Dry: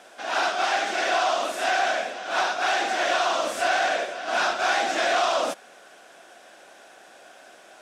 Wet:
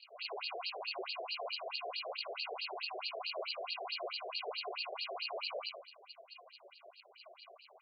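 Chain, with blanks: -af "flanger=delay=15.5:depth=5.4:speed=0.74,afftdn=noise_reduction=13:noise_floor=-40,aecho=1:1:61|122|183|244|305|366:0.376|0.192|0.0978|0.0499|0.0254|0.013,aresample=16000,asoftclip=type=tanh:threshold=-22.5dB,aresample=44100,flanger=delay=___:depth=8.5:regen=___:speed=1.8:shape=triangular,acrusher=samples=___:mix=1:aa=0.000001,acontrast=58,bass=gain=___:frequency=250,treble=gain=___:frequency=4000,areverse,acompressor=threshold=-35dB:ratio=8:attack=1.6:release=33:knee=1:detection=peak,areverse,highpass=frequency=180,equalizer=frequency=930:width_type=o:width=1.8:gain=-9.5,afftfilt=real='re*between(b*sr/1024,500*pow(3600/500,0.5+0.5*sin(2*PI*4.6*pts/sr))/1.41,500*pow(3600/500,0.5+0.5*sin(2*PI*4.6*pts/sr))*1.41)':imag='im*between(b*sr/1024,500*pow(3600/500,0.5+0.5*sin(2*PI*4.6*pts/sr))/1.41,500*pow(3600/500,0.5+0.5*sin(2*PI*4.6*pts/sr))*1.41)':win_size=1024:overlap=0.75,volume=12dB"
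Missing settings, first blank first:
2.4, -30, 25, 4, 15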